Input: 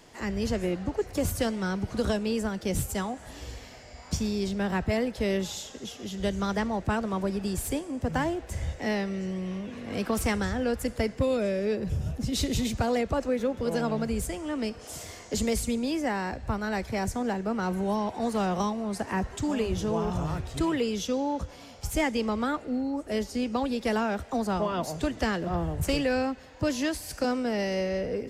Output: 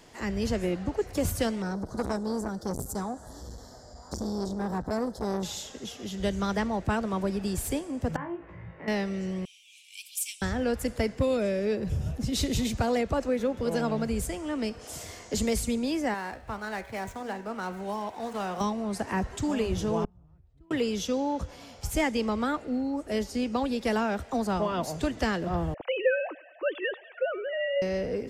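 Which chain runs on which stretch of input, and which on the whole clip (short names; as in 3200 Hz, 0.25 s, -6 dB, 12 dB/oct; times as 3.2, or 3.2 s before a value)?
1.62–5.43 Butterworth band-stop 2500 Hz, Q 0.87 + core saturation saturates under 680 Hz
8.16–8.88 compressor 2:1, threshold -39 dBFS + speaker cabinet 140–2100 Hz, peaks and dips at 160 Hz +7 dB, 240 Hz -9 dB, 500 Hz -4 dB, 730 Hz -10 dB, 1100 Hz +4 dB, 1600 Hz -3 dB + flutter echo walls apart 3 m, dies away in 0.26 s
9.45–10.42 high shelf 8500 Hz +11 dB + upward compressor, threshold -32 dBFS + rippled Chebyshev high-pass 2300 Hz, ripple 6 dB
16.14–18.61 median filter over 9 samples + low shelf 430 Hz -11 dB + de-hum 80.54 Hz, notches 35
20.04–20.71 RIAA curve playback + flipped gate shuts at -21 dBFS, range -38 dB
25.74–27.82 sine-wave speech + bell 200 Hz -12.5 dB 1.2 oct + thinning echo 99 ms, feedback 70%, high-pass 630 Hz, level -19.5 dB
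whole clip: dry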